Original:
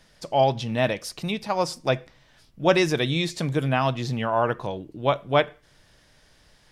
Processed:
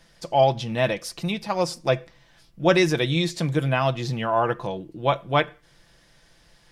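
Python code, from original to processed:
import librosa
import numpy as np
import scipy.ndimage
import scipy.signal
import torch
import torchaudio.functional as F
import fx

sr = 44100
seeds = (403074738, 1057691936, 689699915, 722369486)

y = x + 0.41 * np.pad(x, (int(5.9 * sr / 1000.0), 0))[:len(x)]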